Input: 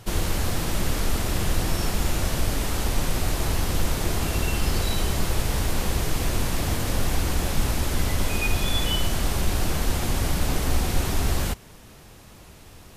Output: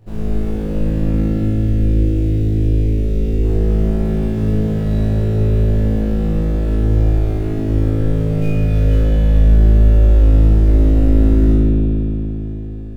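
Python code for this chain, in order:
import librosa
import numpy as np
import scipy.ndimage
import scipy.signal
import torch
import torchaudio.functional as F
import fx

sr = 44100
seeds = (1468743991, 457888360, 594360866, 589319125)

y = scipy.ndimage.median_filter(x, 41, mode='constant')
y = fx.curve_eq(y, sr, hz=(340.0, 1200.0, 2200.0), db=(0, -17, -1), at=(1.21, 3.43))
y = fx.room_flutter(y, sr, wall_m=3.2, rt60_s=1.1)
y = fx.rev_spring(y, sr, rt60_s=3.6, pass_ms=(56,), chirp_ms=25, drr_db=-1.5)
y = y * librosa.db_to_amplitude(-3.5)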